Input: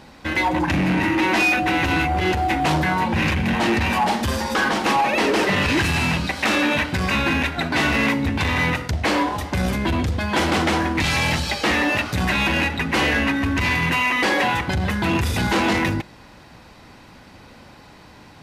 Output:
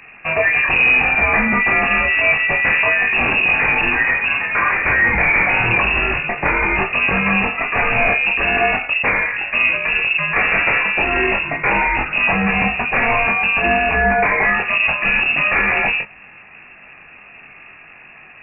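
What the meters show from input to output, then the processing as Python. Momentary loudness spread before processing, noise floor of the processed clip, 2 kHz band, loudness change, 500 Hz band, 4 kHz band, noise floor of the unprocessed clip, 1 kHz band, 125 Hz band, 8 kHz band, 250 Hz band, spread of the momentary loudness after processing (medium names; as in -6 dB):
4 LU, -42 dBFS, +8.0 dB, +5.5 dB, +2.0 dB, -2.5 dB, -46 dBFS, +2.0 dB, -5.5 dB, under -40 dB, -5.0 dB, 4 LU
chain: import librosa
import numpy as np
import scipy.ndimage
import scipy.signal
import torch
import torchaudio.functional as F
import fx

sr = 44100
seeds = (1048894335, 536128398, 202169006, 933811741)

p1 = x + fx.room_early_taps(x, sr, ms=(22, 38), db=(-4.0, -9.5), dry=0)
p2 = fx.freq_invert(p1, sr, carrier_hz=2700)
y = p2 * 10.0 ** (2.0 / 20.0)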